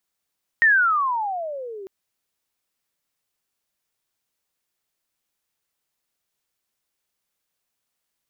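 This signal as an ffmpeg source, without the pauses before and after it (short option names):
-f lavfi -i "aevalsrc='pow(10,(-11.5-22*t/1.25)/20)*sin(2*PI*1880*1.25/(-28*log(2)/12)*(exp(-28*log(2)/12*t/1.25)-1))':d=1.25:s=44100"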